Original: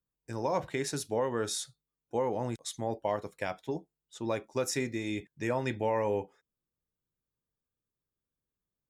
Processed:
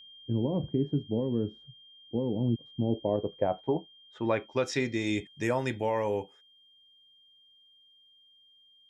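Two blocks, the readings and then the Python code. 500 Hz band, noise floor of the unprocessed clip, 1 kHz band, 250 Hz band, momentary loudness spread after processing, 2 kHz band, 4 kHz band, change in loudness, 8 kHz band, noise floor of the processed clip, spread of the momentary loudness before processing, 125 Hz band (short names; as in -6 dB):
+1.5 dB, under -85 dBFS, -1.0 dB, +6.5 dB, 5 LU, +1.5 dB, +0.5 dB, +2.5 dB, -9.5 dB, -62 dBFS, 8 LU, +7.0 dB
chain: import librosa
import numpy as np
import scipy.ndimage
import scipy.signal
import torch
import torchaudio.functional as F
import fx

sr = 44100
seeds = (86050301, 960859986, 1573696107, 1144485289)

y = fx.filter_sweep_lowpass(x, sr, from_hz=250.0, to_hz=11000.0, start_s=2.81, end_s=5.44, q=1.3)
y = y + 10.0 ** (-59.0 / 20.0) * np.sin(2.0 * np.pi * 3200.0 * np.arange(len(y)) / sr)
y = fx.rider(y, sr, range_db=5, speed_s=0.5)
y = y * 10.0 ** (5.0 / 20.0)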